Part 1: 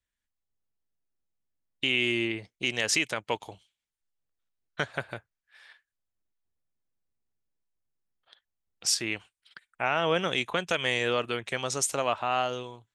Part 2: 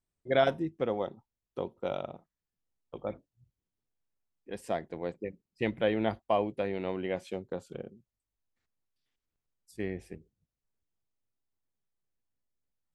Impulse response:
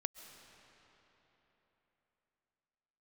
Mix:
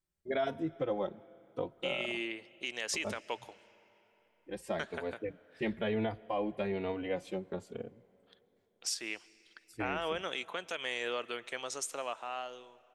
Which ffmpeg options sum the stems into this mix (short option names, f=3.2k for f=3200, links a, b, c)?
-filter_complex "[0:a]highpass=310,dynaudnorm=f=230:g=11:m=8dB,volume=-16.5dB,asplit=2[a][b];[b]volume=-10.5dB[c];[1:a]asplit=2[d][e];[e]adelay=3.4,afreqshift=1.1[f];[d][f]amix=inputs=2:normalize=1,volume=0.5dB,asplit=2[g][h];[h]volume=-14dB[i];[2:a]atrim=start_sample=2205[j];[c][i]amix=inputs=2:normalize=0[k];[k][j]afir=irnorm=-1:irlink=0[l];[a][g][l]amix=inputs=3:normalize=0,alimiter=limit=-23.5dB:level=0:latency=1:release=114"